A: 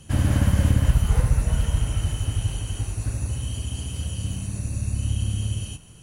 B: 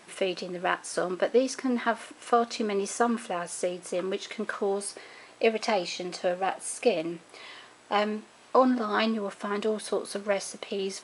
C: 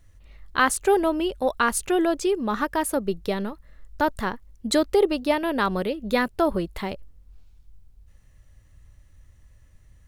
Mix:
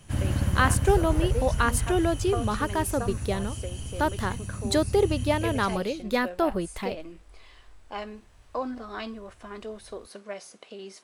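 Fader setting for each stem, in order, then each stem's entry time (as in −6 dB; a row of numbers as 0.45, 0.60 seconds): −6.0, −10.0, −3.0 decibels; 0.00, 0.00, 0.00 seconds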